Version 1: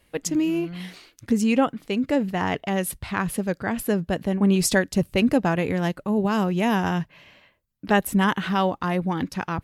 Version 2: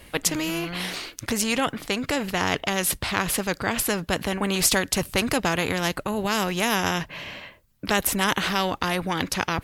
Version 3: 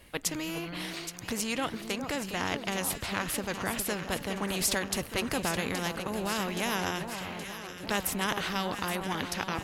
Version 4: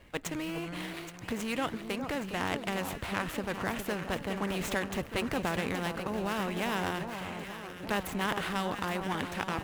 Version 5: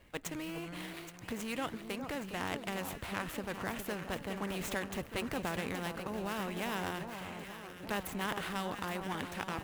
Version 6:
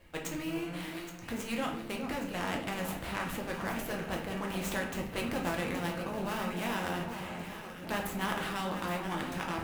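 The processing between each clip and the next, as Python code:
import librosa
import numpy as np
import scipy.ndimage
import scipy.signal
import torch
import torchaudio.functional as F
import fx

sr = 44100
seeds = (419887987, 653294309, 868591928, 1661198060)

y1 = fx.spectral_comp(x, sr, ratio=2.0)
y2 = fx.echo_alternate(y1, sr, ms=411, hz=1300.0, feedback_pct=79, wet_db=-7.5)
y2 = F.gain(torch.from_numpy(y2), -8.0).numpy()
y3 = scipy.signal.medfilt(y2, 9)
y4 = fx.high_shelf(y3, sr, hz=9300.0, db=5.5)
y4 = F.gain(torch.from_numpy(y4), -5.0).numpy()
y5 = fx.room_shoebox(y4, sr, seeds[0], volume_m3=96.0, walls='mixed', distance_m=0.77)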